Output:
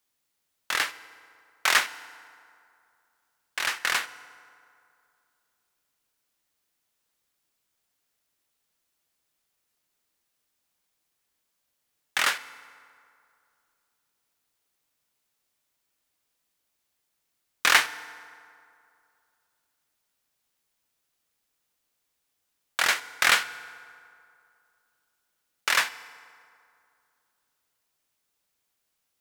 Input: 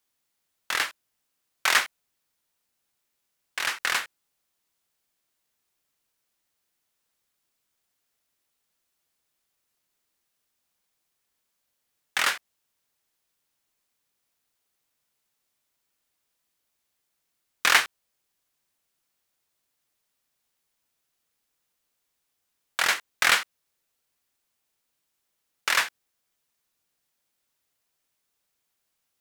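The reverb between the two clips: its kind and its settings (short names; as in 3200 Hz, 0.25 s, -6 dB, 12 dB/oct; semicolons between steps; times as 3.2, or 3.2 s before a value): FDN reverb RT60 2.5 s, low-frequency decay 0.85×, high-frequency decay 0.55×, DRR 14.5 dB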